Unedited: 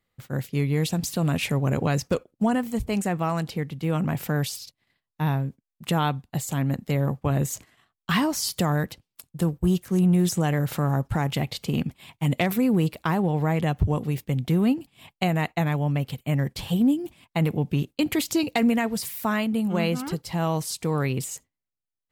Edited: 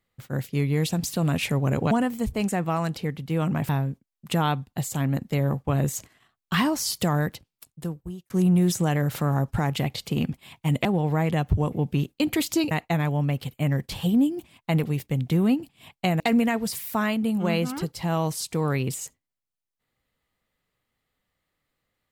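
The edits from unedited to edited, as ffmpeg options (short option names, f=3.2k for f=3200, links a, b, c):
-filter_complex "[0:a]asplit=9[a][b][c][d][e][f][g][h][i];[a]atrim=end=1.912[j];[b]atrim=start=2.438:end=4.222[k];[c]atrim=start=5.258:end=9.87,asetpts=PTS-STARTPTS,afade=t=out:st=3.632:d=0.98[l];[d]atrim=start=9.87:end=12.422,asetpts=PTS-STARTPTS,afade=t=in:d=0.004:c=hsin[m];[e]atrim=start=13.148:end=14.022[n];[f]atrim=start=17.508:end=18.502[o];[g]atrim=start=15.378:end=17.512[p];[h]atrim=start=14.018:end=15.382[q];[i]atrim=start=18.498[r];[j][k]acrossfade=d=0.004:c1=hsin:c2=hsin[s];[l][m]concat=n=2:v=0:a=1[t];[s][t]acrossfade=d=0.004:c1=hsin:c2=hsin[u];[u][n]acrossfade=d=0.004:c1=hsin:c2=hsin[v];[v][o]acrossfade=d=0.004:c1=hsin:c2=hsin[w];[w][p]acrossfade=d=0.004:c1=hsin:c2=hsin[x];[x][q]acrossfade=d=0.004:c1=hsin:c2=hsin[y];[y][r]acrossfade=d=0.004:c1=hsin:c2=hsin"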